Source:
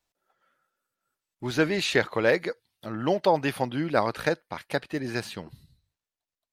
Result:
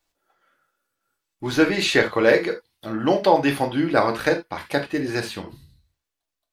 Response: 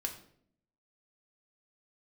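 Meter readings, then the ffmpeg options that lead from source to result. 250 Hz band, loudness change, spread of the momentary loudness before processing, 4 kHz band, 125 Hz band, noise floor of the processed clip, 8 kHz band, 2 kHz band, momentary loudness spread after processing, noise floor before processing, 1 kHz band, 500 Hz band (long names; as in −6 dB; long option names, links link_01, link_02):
+7.0 dB, +5.5 dB, 14 LU, +5.5 dB, +2.5 dB, −84 dBFS, +5.0 dB, +5.5 dB, 14 LU, below −85 dBFS, +5.5 dB, +5.5 dB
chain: -filter_complex "[1:a]atrim=start_sample=2205,atrim=end_sample=3969[link_01];[0:a][link_01]afir=irnorm=-1:irlink=0,volume=5dB"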